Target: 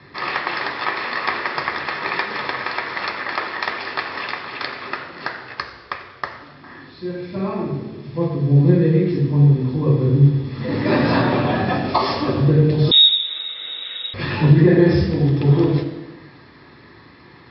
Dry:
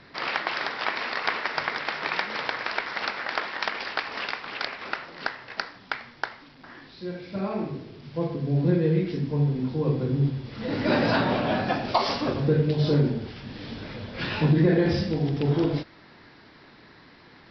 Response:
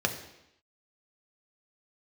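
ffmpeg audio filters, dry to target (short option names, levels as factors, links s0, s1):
-filter_complex "[0:a]asplit=3[s0][s1][s2];[s0]afade=t=out:st=5.54:d=0.02[s3];[s1]aeval=exprs='val(0)*sin(2*PI*230*n/s)':c=same,afade=t=in:st=5.54:d=0.02,afade=t=out:st=6.25:d=0.02[s4];[s2]afade=t=in:st=6.25:d=0.02[s5];[s3][s4][s5]amix=inputs=3:normalize=0[s6];[1:a]atrim=start_sample=2205,asetrate=31752,aresample=44100[s7];[s6][s7]afir=irnorm=-1:irlink=0,asettb=1/sr,asplit=3[s8][s9][s10];[s8]atrim=end=12.914[s11];[s9]atrim=start=12.91:end=14.14,asetpts=PTS-STARTPTS,afade=t=in:d=0.004:c=qsin,afade=t=out:st=1.226:d=0.004:c=qsin,lowpass=f=3300:t=q:w=0.5098,lowpass=f=3300:t=q:w=0.6013,lowpass=f=3300:t=q:w=0.9,lowpass=f=3300:t=q:w=2.563,afreqshift=-3900[s12];[s10]atrim=start=14.136[s13];[s11][s12]acrossfade=d=0.004:c1=hsin:c2=qsin[s14];[s14][s13]acrossfade=d=0.004:c1=qsin:c2=hsin,volume=0.473"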